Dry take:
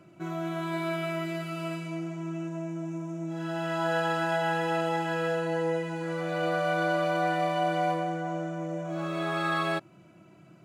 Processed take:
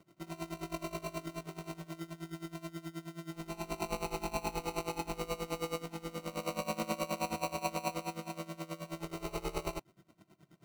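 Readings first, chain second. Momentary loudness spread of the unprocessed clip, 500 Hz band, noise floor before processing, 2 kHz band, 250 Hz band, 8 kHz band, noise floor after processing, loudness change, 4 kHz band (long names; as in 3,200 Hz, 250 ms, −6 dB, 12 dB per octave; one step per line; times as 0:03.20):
8 LU, −10.5 dB, −55 dBFS, −14.0 dB, −9.5 dB, +4.0 dB, −67 dBFS, −9.5 dB, −6.0 dB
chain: decimation without filtering 26×
tremolo with a sine in dB 9.4 Hz, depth 19 dB
level −4.5 dB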